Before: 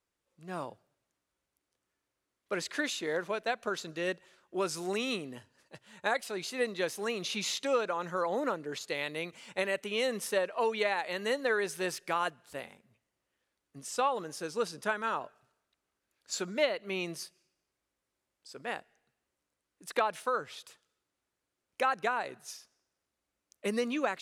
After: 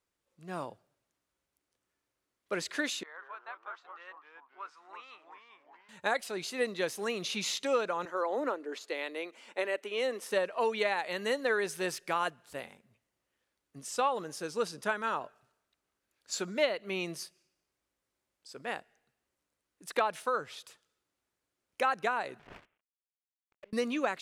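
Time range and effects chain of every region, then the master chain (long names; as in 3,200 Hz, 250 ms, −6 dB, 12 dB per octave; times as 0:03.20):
0:03.03–0:05.89: four-pole ladder band-pass 1,300 Hz, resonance 55% + delay with pitch and tempo change per echo 144 ms, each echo −2 semitones, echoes 3, each echo −6 dB
0:08.05–0:10.31: Butterworth high-pass 260 Hz + high-shelf EQ 3,100 Hz −7.5 dB
0:22.39–0:23.73: variable-slope delta modulation 16 kbit/s + leveller curve on the samples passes 2 + gate with flip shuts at −35 dBFS, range −38 dB
whole clip: no processing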